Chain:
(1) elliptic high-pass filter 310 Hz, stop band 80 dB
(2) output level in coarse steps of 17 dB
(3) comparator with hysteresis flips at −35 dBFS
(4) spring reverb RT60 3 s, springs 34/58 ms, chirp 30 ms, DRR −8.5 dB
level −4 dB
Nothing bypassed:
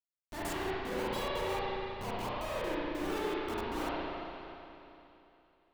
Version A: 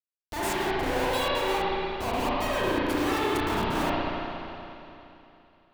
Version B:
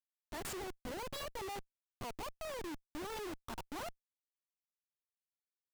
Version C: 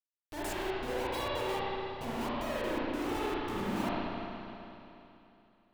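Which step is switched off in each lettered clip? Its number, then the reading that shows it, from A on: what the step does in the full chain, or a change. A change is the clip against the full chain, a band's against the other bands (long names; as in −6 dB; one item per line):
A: 2, 500 Hz band −2.0 dB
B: 4, change in crest factor −5.0 dB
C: 1, 250 Hz band +2.0 dB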